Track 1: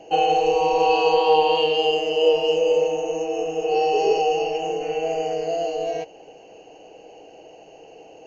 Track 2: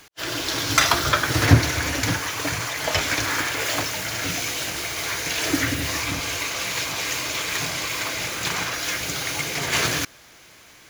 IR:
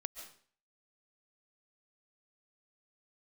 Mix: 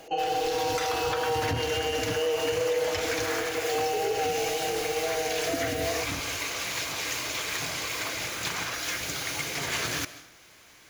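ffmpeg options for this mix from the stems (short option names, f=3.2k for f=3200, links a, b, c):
-filter_complex "[0:a]volume=-4dB[a];[1:a]volume=-8.5dB,asplit=2[b][c];[c]volume=-3.5dB[d];[2:a]atrim=start_sample=2205[e];[d][e]afir=irnorm=-1:irlink=0[f];[a][b][f]amix=inputs=3:normalize=0,equalizer=f=150:w=1.5:g=-2,alimiter=limit=-18.5dB:level=0:latency=1:release=146"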